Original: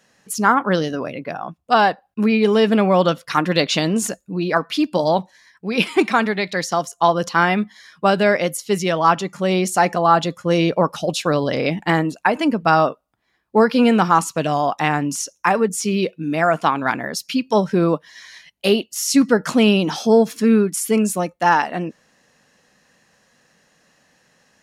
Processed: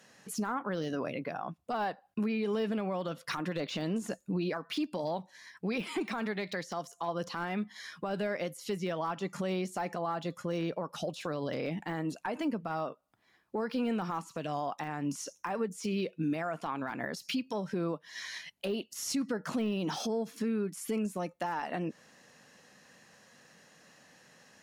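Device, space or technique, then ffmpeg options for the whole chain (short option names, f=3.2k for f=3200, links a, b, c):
podcast mastering chain: -af "highpass=86,deesser=0.75,acompressor=threshold=-28dB:ratio=2.5,alimiter=limit=-24dB:level=0:latency=1:release=200" -ar 44100 -c:a libmp3lame -b:a 112k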